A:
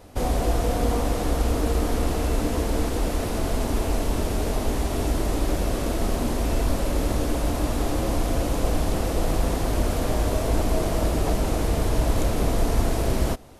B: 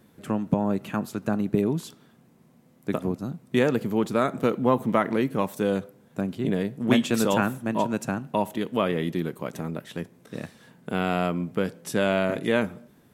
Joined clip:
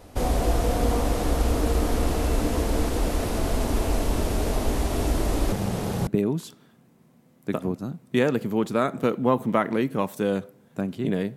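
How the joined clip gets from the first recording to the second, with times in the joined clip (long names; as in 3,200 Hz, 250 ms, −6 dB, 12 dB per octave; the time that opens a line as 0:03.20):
A
0:05.52–0:06.07: ring modulation 150 Hz
0:06.07: continue with B from 0:01.47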